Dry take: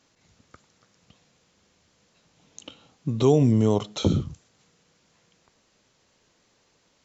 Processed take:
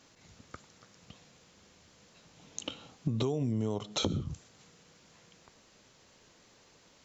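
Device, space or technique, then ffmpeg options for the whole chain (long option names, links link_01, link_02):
serial compression, leveller first: -af "acompressor=threshold=-28dB:ratio=1.5,acompressor=threshold=-32dB:ratio=8,volume=4dB"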